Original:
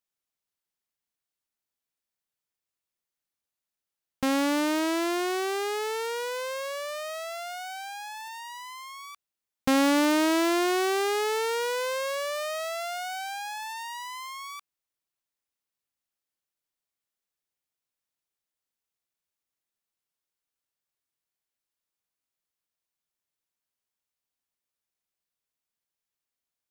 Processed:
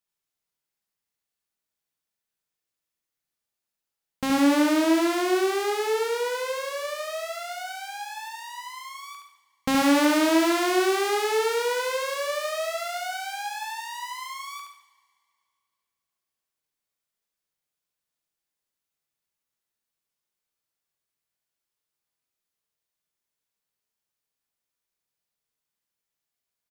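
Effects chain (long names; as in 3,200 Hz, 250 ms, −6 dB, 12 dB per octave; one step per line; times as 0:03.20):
0:04.31–0:06.73: low-shelf EQ 290 Hz +8 dB
repeating echo 71 ms, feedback 31%, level −5 dB
convolution reverb, pre-delay 3 ms, DRR 5.5 dB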